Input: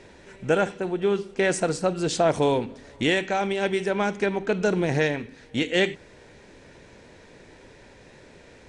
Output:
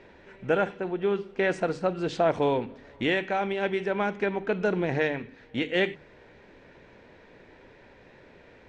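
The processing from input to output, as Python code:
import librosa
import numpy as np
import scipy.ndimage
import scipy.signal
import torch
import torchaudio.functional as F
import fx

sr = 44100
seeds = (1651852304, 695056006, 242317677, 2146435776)

y = scipy.signal.sosfilt(scipy.signal.butter(2, 2900.0, 'lowpass', fs=sr, output='sos'), x)
y = fx.low_shelf(y, sr, hz=400.0, db=-3.0)
y = fx.hum_notches(y, sr, base_hz=50, count=3)
y = y * librosa.db_to_amplitude(-1.5)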